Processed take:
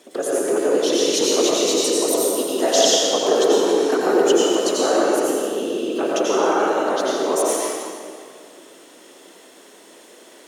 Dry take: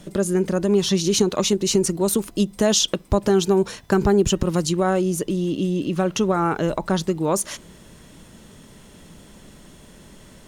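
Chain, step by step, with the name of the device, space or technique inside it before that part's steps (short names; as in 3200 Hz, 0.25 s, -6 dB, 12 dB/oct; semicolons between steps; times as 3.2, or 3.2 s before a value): whispering ghost (whisperiser; HPF 340 Hz 24 dB/oct; reverb RT60 2.2 s, pre-delay 80 ms, DRR -5 dB); gain -2 dB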